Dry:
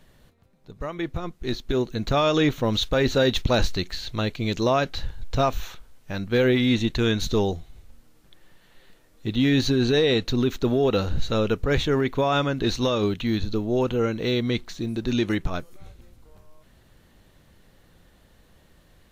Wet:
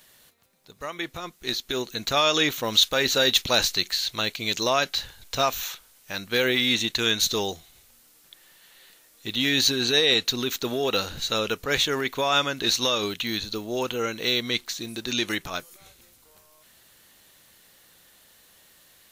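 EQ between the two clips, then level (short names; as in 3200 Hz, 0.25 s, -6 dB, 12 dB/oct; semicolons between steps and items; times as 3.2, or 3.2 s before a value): tilt +4 dB/oct; 0.0 dB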